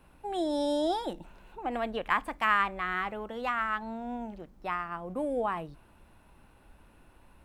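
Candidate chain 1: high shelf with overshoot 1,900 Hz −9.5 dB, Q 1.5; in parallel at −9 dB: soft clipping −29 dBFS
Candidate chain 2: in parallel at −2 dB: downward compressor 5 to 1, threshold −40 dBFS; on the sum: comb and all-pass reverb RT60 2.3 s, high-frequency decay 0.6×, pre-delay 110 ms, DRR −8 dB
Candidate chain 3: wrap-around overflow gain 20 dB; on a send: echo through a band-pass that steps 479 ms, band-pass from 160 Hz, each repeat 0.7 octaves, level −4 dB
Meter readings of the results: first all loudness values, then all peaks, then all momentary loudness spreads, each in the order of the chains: −29.5, −21.5, −32.0 LKFS; −12.0, −5.5, −18.5 dBFS; 12, 12, 16 LU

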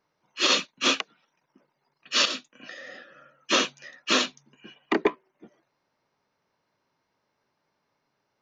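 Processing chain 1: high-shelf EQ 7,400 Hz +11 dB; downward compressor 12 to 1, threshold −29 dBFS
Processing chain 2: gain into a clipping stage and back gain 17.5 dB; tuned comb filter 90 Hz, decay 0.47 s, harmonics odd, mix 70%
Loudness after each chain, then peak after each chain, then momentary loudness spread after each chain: −35.0, −34.5 LKFS; −13.0, −22.0 dBFS; 16, 19 LU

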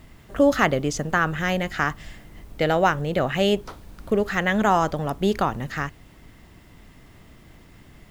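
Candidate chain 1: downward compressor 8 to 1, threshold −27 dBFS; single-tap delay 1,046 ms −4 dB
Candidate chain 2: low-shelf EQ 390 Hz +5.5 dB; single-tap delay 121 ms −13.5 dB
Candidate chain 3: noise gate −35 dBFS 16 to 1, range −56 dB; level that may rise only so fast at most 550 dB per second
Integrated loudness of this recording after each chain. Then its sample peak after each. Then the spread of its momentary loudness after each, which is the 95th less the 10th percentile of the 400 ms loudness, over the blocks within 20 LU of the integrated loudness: −32.0, −20.5, −23.5 LKFS; −15.0, −4.0, −4.5 dBFS; 18, 12, 9 LU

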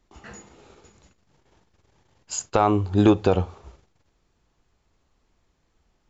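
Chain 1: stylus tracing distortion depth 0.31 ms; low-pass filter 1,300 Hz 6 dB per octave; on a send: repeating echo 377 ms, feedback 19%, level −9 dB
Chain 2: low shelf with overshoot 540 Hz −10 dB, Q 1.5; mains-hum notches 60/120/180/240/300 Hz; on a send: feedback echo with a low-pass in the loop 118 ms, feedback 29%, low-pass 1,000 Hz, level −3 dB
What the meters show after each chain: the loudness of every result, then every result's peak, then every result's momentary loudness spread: −22.5, −25.5 LKFS; −6.5, −6.0 dBFS; 16, 23 LU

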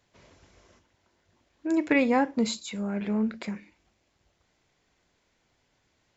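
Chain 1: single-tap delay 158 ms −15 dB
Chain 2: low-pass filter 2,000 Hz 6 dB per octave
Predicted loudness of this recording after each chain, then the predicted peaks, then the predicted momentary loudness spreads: −27.5, −28.0 LKFS; −9.5, −11.0 dBFS; 14, 15 LU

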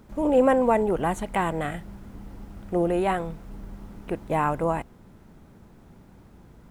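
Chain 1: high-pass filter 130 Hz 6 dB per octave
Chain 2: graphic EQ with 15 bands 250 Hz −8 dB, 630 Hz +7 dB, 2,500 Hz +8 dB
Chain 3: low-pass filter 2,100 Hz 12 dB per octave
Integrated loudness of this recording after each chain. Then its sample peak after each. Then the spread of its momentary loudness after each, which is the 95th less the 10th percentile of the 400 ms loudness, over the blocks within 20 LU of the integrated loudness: −25.0, −22.5, −25.0 LKFS; −9.5, −5.0, −9.0 dBFS; 16, 17, 23 LU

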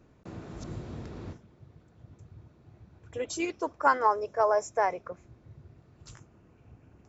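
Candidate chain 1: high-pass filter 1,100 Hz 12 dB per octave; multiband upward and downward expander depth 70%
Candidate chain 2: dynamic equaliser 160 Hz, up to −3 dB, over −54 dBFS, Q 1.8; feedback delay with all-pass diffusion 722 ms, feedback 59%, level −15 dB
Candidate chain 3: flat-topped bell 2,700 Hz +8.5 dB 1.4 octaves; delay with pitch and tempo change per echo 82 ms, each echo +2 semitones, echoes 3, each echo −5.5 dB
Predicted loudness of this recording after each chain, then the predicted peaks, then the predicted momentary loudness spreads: −27.5, −30.0, −28.0 LKFS; −7.5, −9.5, −8.5 dBFS; 11, 21, 20 LU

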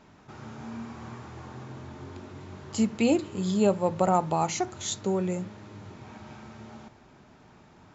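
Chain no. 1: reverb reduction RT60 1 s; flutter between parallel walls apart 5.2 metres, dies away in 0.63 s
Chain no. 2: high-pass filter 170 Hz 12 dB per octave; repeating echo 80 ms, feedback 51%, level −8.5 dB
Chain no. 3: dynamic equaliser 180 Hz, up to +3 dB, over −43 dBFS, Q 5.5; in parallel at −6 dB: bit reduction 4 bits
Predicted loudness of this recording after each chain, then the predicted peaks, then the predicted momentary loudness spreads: −25.5, −27.0, −23.0 LKFS; −8.5, −11.0, −7.0 dBFS; 22, 22, 22 LU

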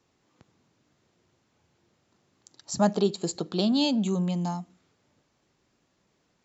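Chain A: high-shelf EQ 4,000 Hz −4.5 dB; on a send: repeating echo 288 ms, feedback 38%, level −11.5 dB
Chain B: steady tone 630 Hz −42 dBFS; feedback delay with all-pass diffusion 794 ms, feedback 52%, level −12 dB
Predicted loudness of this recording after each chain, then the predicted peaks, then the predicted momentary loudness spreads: −27.0, −28.0 LKFS; −10.5, −10.0 dBFS; 16, 21 LU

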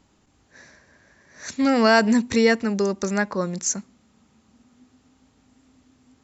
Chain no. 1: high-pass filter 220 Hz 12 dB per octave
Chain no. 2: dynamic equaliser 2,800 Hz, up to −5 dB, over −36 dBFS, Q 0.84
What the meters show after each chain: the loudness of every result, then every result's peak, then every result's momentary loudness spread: −22.0, −21.5 LKFS; −4.0, −5.5 dBFS; 11, 12 LU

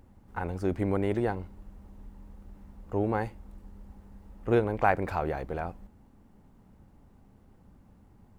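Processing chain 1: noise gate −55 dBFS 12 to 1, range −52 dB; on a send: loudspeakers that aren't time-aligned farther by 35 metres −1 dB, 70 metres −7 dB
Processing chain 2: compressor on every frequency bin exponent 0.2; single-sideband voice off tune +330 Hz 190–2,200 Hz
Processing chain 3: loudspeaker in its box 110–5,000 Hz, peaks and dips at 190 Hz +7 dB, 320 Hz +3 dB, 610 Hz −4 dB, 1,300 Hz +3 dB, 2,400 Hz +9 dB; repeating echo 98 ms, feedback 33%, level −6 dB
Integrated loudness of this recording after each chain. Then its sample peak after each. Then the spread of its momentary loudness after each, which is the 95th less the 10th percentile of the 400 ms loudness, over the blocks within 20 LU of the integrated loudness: −27.5, −23.0, −28.5 LKFS; −9.0, −6.0, −7.0 dBFS; 17, 6, 16 LU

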